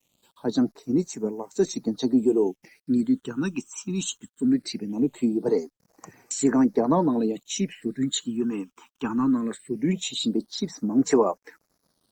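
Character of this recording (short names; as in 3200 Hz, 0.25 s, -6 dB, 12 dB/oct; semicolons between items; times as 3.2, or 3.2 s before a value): a quantiser's noise floor 10-bit, dither none; phasing stages 8, 0.2 Hz, lowest notch 570–3500 Hz; Opus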